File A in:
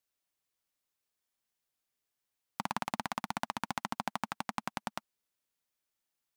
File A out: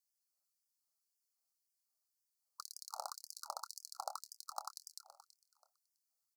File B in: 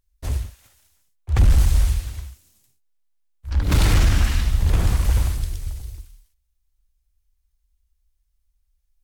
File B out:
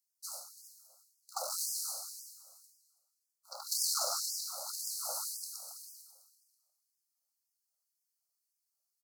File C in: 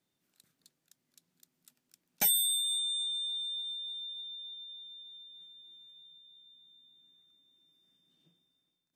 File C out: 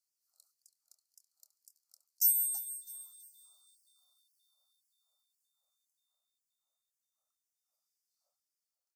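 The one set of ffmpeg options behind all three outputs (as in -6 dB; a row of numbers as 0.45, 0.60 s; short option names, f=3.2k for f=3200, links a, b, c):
-filter_complex "[0:a]equalizer=f=1k:w=3.1:g=-10,asplit=2[a][b];[b]acrusher=bits=5:mode=log:mix=0:aa=0.000001,volume=-8dB[c];[a][c]amix=inputs=2:normalize=0,asuperstop=centerf=2400:order=20:qfactor=0.85,asplit=2[d][e];[e]adelay=26,volume=-11.5dB[f];[d][f]amix=inputs=2:normalize=0,bandreject=f=94.92:t=h:w=4,bandreject=f=189.84:t=h:w=4,bandreject=f=284.76:t=h:w=4,bandreject=f=379.68:t=h:w=4,bandreject=f=474.6:t=h:w=4,bandreject=f=569.52:t=h:w=4,bandreject=f=664.44:t=h:w=4,bandreject=f=759.36:t=h:w=4,bandreject=f=854.28:t=h:w=4,bandreject=f=949.2:t=h:w=4,asplit=2[g][h];[h]aecho=0:1:328|656|984:0.158|0.0491|0.0152[i];[g][i]amix=inputs=2:normalize=0,afftfilt=real='re*gte(b*sr/1024,490*pow(4800/490,0.5+0.5*sin(2*PI*1.9*pts/sr)))':imag='im*gte(b*sr/1024,490*pow(4800/490,0.5+0.5*sin(2*PI*1.9*pts/sr)))':win_size=1024:overlap=0.75,volume=-3dB"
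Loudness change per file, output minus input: -9.0, -14.5, +1.5 LU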